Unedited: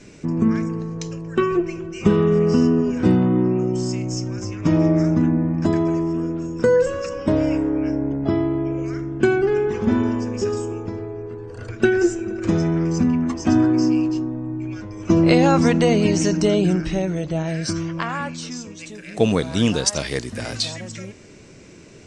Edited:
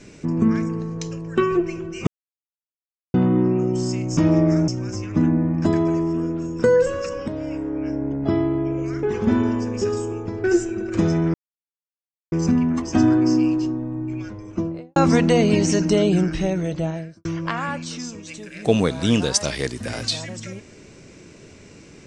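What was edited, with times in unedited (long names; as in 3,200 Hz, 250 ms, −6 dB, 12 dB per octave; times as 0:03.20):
0:02.07–0:03.14: silence
0:04.17–0:04.65: move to 0:05.16
0:07.28–0:08.36: fade in linear, from −12.5 dB
0:09.03–0:09.63: remove
0:11.04–0:11.94: remove
0:12.84: splice in silence 0.98 s
0:14.66–0:15.48: fade out and dull
0:17.28–0:17.77: fade out and dull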